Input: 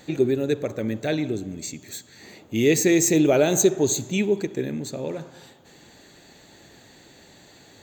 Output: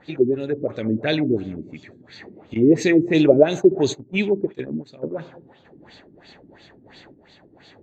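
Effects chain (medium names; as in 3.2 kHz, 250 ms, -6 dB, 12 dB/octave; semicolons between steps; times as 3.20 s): LFO low-pass sine 2.9 Hz 270–4200 Hz; 2.54–5.15 s: gate -25 dBFS, range -16 dB; random-step tremolo; trim +3 dB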